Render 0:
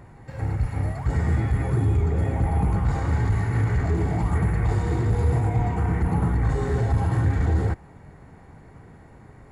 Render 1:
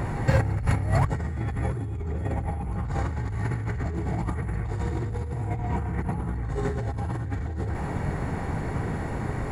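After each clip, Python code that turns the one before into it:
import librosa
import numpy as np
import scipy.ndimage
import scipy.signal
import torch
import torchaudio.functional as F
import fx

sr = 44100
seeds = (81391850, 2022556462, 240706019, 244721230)

y = fx.over_compress(x, sr, threshold_db=-34.0, ratio=-1.0)
y = y * librosa.db_to_amplitude(6.5)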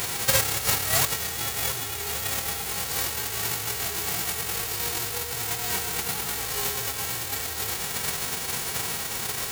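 y = fx.envelope_flatten(x, sr, power=0.1)
y = fx.notch_comb(y, sr, f0_hz=300.0)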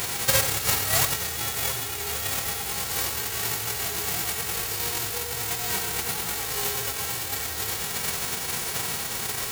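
y = x + 10.0 ** (-10.0 / 20.0) * np.pad(x, (int(90 * sr / 1000.0), 0))[:len(x)]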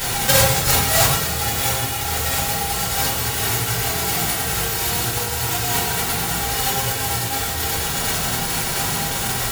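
y = fx.room_shoebox(x, sr, seeds[0], volume_m3=270.0, walls='furnished', distance_m=7.3)
y = y * librosa.db_to_amplitude(-3.5)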